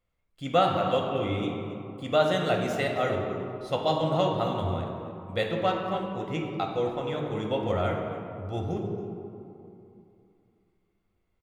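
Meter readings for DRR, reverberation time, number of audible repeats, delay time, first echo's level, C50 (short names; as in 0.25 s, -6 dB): 0.0 dB, 2.8 s, 1, 0.275 s, -14.5 dB, 3.0 dB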